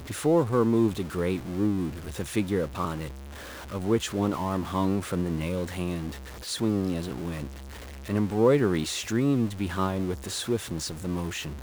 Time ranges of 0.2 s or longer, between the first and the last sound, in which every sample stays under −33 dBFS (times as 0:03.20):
0:03.09–0:03.72
0:06.12–0:06.47
0:07.47–0:08.09